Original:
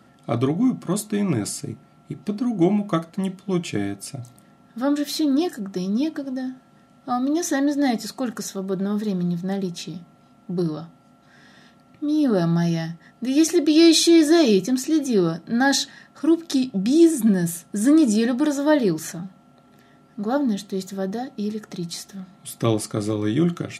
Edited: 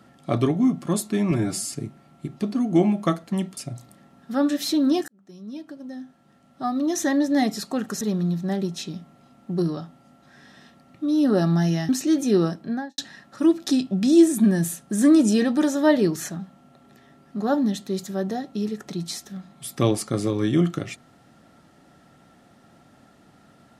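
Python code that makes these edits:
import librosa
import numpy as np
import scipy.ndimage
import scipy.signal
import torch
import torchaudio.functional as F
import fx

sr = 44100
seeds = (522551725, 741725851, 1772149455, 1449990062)

y = fx.studio_fade_out(x, sr, start_s=15.34, length_s=0.47)
y = fx.edit(y, sr, fx.stretch_span(start_s=1.31, length_s=0.28, factor=1.5),
    fx.cut(start_s=3.43, length_s=0.61),
    fx.fade_in_span(start_s=5.55, length_s=2.13),
    fx.cut(start_s=8.48, length_s=0.53),
    fx.cut(start_s=12.89, length_s=1.83), tone=tone)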